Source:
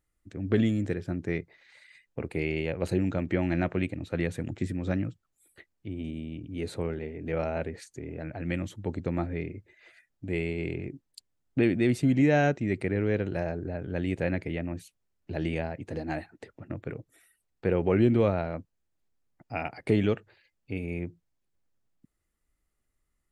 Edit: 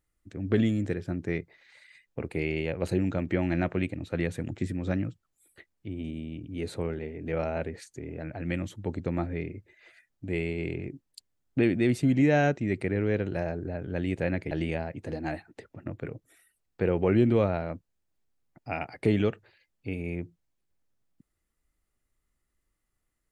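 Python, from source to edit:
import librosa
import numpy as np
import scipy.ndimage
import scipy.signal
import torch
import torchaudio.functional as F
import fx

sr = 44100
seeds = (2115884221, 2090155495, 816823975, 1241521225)

y = fx.edit(x, sr, fx.cut(start_s=14.51, length_s=0.84), tone=tone)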